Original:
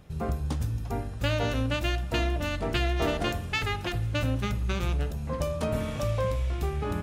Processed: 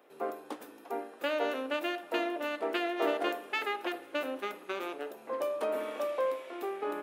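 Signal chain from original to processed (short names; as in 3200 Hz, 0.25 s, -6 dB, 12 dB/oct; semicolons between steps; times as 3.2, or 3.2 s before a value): steep high-pass 310 Hz 36 dB/oct; bell 6100 Hz -13 dB 1.7 oct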